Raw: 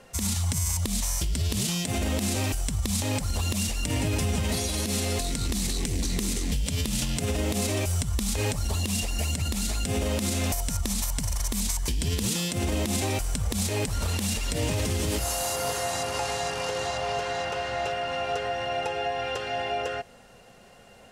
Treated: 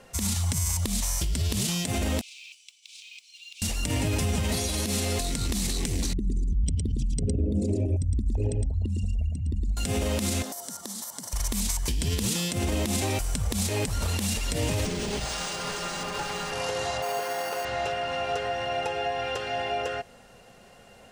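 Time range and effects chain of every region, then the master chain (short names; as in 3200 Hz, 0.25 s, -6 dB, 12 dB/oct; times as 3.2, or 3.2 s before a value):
2.21–3.62 steep high-pass 2300 Hz 96 dB/oct + tape spacing loss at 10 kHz 27 dB + modulation noise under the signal 25 dB
6.13–9.77 formant sharpening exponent 3 + de-hum 271.1 Hz, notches 11 + echo 0.111 s -3.5 dB
10.42–11.33 HPF 220 Hz 24 dB/oct + bell 2500 Hz -14.5 dB 0.44 oct + compressor 4:1, threshold -33 dBFS
14.85–16.52 minimum comb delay 5 ms + decimation joined by straight lines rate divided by 3×
17.02–17.65 BPF 240–3400 Hz + careless resampling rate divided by 6×, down none, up hold
whole clip: dry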